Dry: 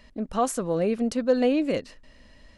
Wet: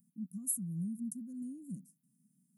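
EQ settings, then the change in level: brick-wall FIR high-pass 160 Hz; inverse Chebyshev band-stop 420–4300 Hz, stop band 60 dB; +8.5 dB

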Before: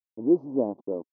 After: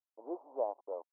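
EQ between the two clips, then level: HPF 720 Hz 24 dB/oct; LPF 1000 Hz 12 dB/oct; +4.0 dB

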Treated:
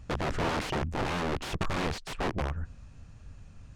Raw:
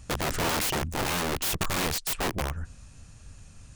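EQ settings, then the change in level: tape spacing loss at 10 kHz 20 dB; 0.0 dB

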